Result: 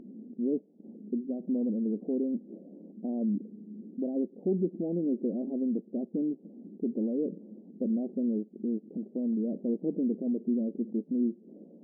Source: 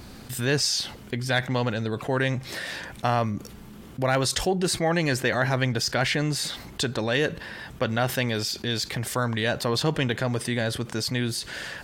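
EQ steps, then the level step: Gaussian low-pass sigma 23 samples; brick-wall FIR high-pass 190 Hz; tilt EQ -3.5 dB/octave; -1.5 dB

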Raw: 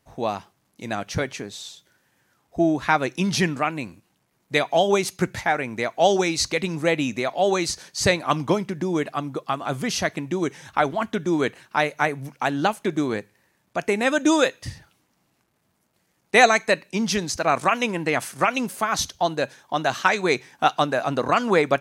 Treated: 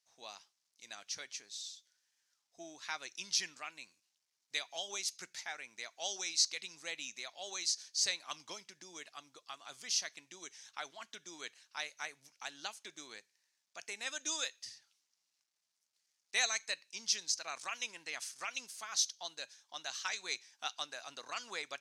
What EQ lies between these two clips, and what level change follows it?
band-pass filter 5.5 kHz, Q 1.9; -3.5 dB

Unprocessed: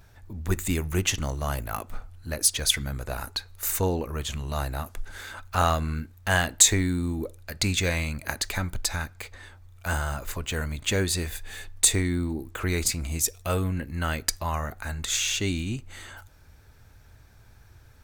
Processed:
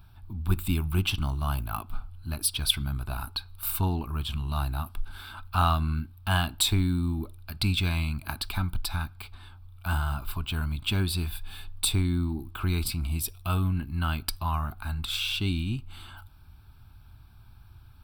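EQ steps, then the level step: bass shelf 330 Hz +2.5 dB; static phaser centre 1.9 kHz, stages 6; 0.0 dB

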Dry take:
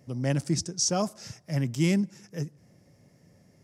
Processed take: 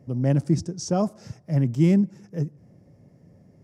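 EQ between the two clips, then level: tilt shelf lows +8 dB, about 1.3 kHz; -1.5 dB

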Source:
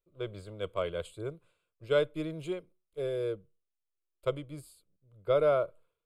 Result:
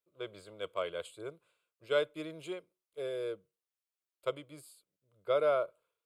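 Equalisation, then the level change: high-pass 580 Hz 6 dB/octave; 0.0 dB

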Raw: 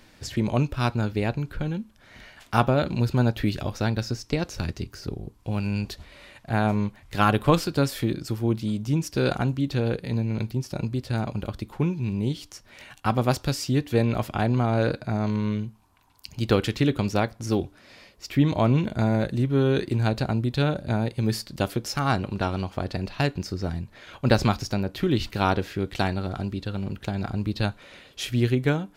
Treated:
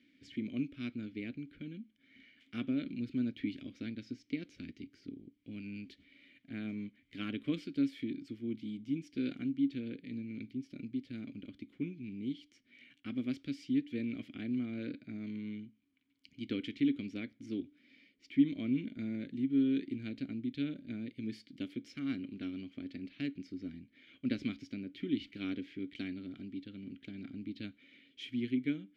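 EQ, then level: vowel filter i; -2.0 dB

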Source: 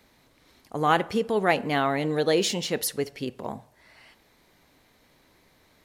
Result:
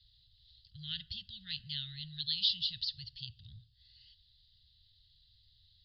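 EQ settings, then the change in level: inverse Chebyshev band-stop 280–1200 Hz, stop band 60 dB; rippled Chebyshev low-pass 4.9 kHz, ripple 3 dB; static phaser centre 2.3 kHz, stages 6; +4.5 dB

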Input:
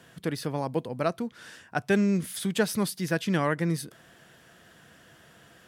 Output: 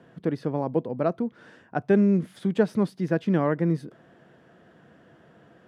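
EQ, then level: band-pass filter 320 Hz, Q 0.57; +5.0 dB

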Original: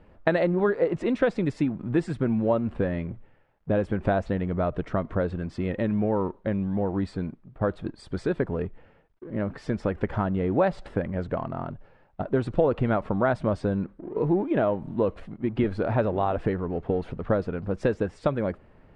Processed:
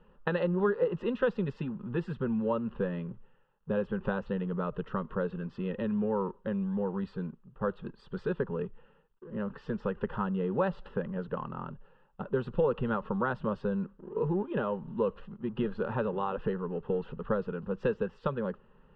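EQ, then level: resonant low-pass 2.7 kHz, resonance Q 4.7; static phaser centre 450 Hz, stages 8; -3.5 dB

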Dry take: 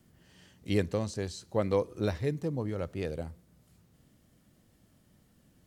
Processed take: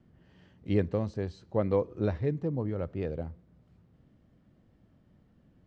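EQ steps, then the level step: tape spacing loss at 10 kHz 37 dB; treble shelf 5.1 kHz +5 dB; +2.5 dB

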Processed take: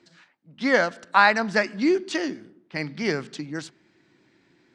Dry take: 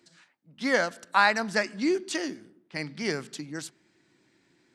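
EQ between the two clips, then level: distance through air 100 m; +5.0 dB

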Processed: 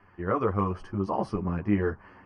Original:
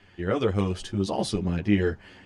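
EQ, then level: boxcar filter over 12 samples; peaking EQ 1.1 kHz +14 dB 0.6 oct; -3.0 dB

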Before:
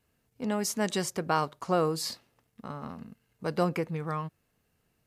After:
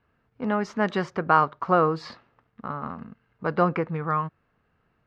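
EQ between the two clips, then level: low-pass 3.1 kHz 6 dB/octave; distance through air 200 m; peaking EQ 1.3 kHz +9 dB 1.1 oct; +4.0 dB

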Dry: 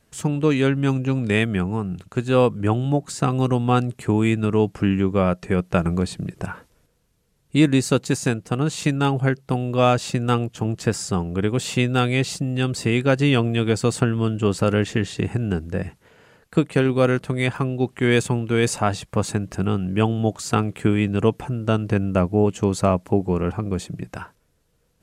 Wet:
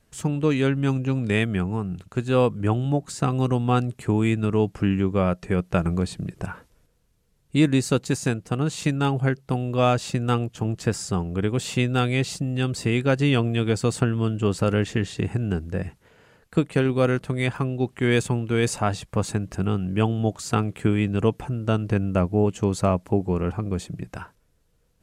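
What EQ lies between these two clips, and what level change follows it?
bass shelf 63 Hz +7.5 dB; -3.0 dB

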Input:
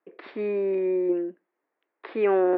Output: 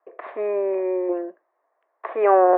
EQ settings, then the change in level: cabinet simulation 470–3000 Hz, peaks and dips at 660 Hz +9 dB, 1.1 kHz +10 dB, 1.8 kHz +5 dB; peaking EQ 630 Hz +14.5 dB 2.6 oct; -6.0 dB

